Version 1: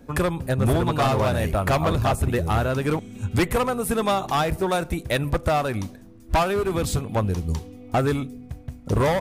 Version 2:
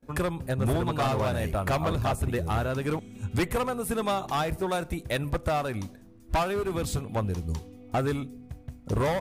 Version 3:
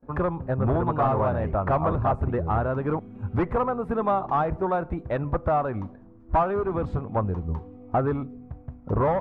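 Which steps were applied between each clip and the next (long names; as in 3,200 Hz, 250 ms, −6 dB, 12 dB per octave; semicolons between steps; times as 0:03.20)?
noise gate with hold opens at −41 dBFS; level −5.5 dB
low-pass with resonance 1,100 Hz, resonance Q 1.5; level +2 dB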